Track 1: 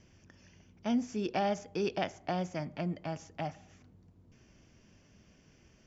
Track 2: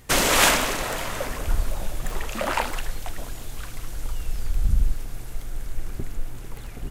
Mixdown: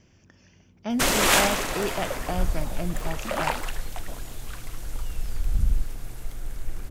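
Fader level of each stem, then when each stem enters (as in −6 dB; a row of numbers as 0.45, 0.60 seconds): +3.0, −2.0 decibels; 0.00, 0.90 seconds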